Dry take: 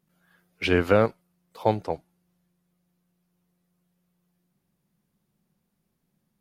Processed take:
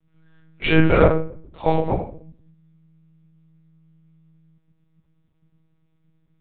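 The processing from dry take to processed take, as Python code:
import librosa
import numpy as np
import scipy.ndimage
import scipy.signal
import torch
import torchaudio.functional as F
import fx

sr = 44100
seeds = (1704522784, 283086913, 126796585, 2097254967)

y = fx.peak_eq(x, sr, hz=170.0, db=8.0, octaves=0.36)
y = fx.room_shoebox(y, sr, seeds[0], volume_m3=62.0, walls='mixed', distance_m=1.6)
y = fx.lpc_monotone(y, sr, seeds[1], pitch_hz=160.0, order=10)
y = y * 10.0 ** (-2.5 / 20.0)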